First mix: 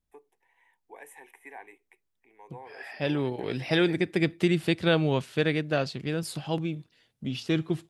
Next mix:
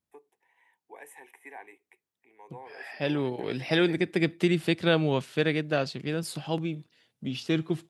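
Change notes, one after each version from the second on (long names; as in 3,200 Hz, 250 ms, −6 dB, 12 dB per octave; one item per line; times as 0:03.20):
master: add high-pass filter 120 Hz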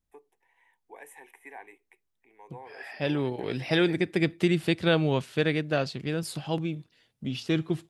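master: remove high-pass filter 120 Hz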